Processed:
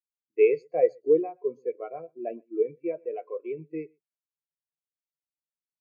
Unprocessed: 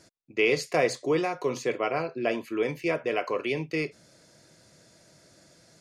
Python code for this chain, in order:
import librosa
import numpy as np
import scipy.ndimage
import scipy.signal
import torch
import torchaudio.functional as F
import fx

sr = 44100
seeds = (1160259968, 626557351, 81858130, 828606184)

y = x + 10.0 ** (-13.0 / 20.0) * np.pad(x, (int(124 * sr / 1000.0), 0))[:len(x)]
y = fx.spectral_expand(y, sr, expansion=2.5)
y = y * librosa.db_to_amplitude(1.5)